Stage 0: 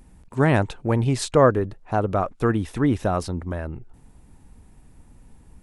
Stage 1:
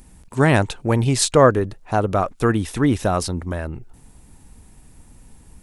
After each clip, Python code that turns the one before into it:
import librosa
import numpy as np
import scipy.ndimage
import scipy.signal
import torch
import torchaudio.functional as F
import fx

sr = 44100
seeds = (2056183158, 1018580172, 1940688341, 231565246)

y = fx.high_shelf(x, sr, hz=3200.0, db=9.5)
y = y * 10.0 ** (2.5 / 20.0)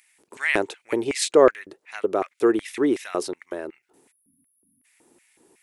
y = fx.spec_erase(x, sr, start_s=4.11, length_s=0.74, low_hz=290.0, high_hz=9400.0)
y = fx.filter_lfo_highpass(y, sr, shape='square', hz=2.7, low_hz=370.0, high_hz=2100.0, q=4.4)
y = y * 10.0 ** (-7.0 / 20.0)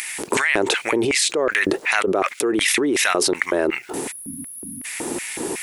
y = fx.env_flatten(x, sr, amount_pct=100)
y = y * 10.0 ** (-7.5 / 20.0)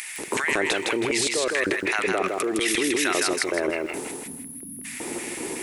y = fx.echo_feedback(x, sr, ms=160, feedback_pct=29, wet_db=-3)
y = y * 10.0 ** (-6.0 / 20.0)